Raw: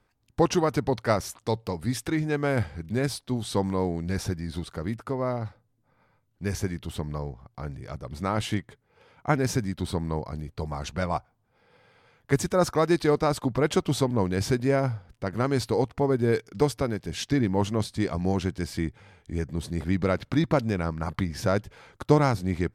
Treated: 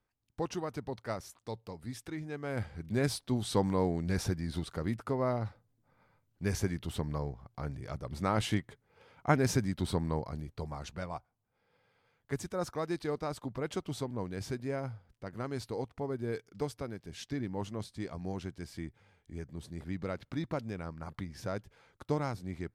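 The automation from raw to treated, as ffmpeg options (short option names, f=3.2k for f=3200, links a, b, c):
-af "volume=-3dB,afade=t=in:st=2.43:d=0.65:silence=0.298538,afade=t=out:st=9.98:d=1.13:silence=0.334965"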